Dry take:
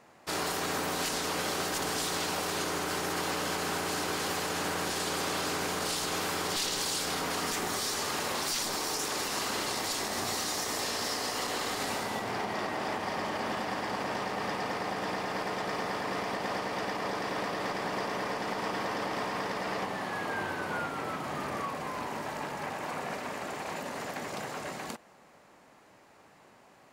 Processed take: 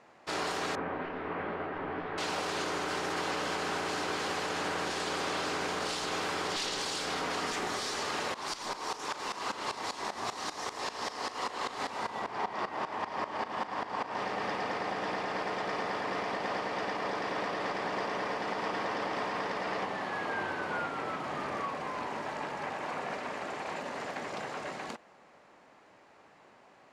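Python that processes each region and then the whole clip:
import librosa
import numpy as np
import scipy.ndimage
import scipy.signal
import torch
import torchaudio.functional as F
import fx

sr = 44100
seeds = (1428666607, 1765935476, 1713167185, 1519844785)

y = fx.chain(x, sr, fx.lowpass(hz=2200.0, slope=24),
    fx.low_shelf(hz=480.0, db=5.0),
    fx.detune_double(cents=51), at=(0.75, 2.18))
y = fx.chain(y, sr, fx.peak_eq(hz=1000.0, db=7.0, octaves=0.54),
    fx.tremolo_shape(shape='saw_up', hz=5.1, depth_pct=95),
    fx.doubler(ms=39.0, db=-14.0), at=(8.34, 14.19))
y = scipy.signal.sosfilt(scipy.signal.butter(2, 7200.0, 'lowpass', fs=sr, output='sos'), y)
y = fx.bass_treble(y, sr, bass_db=-5, treble_db=-4)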